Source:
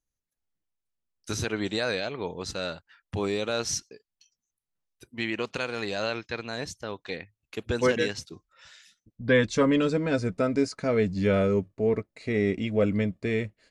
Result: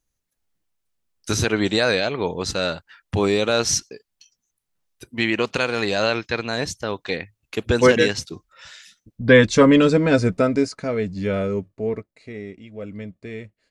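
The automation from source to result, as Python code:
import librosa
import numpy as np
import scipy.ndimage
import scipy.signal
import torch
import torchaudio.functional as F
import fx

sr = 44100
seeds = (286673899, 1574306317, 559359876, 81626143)

y = fx.gain(x, sr, db=fx.line((10.27, 9.0), (10.98, 0.0), (11.89, 0.0), (12.62, -13.0), (13.1, -6.5)))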